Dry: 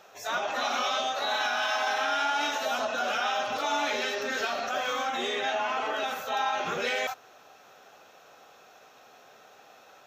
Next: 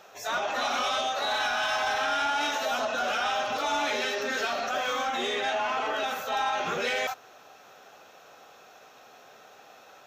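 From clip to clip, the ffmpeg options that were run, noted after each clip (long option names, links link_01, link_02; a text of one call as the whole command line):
ffmpeg -i in.wav -af "asoftclip=type=tanh:threshold=-22dB,volume=2dB" out.wav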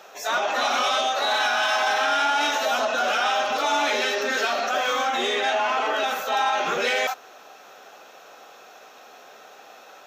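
ffmpeg -i in.wav -af "highpass=230,volume=5.5dB" out.wav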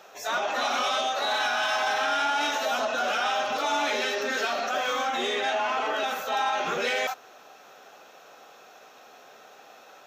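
ffmpeg -i in.wav -af "lowshelf=frequency=110:gain=11.5,volume=-4dB" out.wav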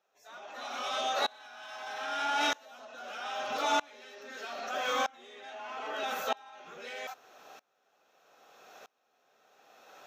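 ffmpeg -i in.wav -af "aeval=exprs='val(0)*pow(10,-29*if(lt(mod(-0.79*n/s,1),2*abs(-0.79)/1000),1-mod(-0.79*n/s,1)/(2*abs(-0.79)/1000),(mod(-0.79*n/s,1)-2*abs(-0.79)/1000)/(1-2*abs(-0.79)/1000))/20)':channel_layout=same" out.wav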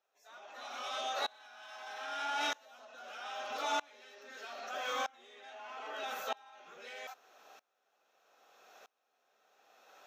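ffmpeg -i in.wav -af "highpass=frequency=340:poles=1,volume=-5dB" out.wav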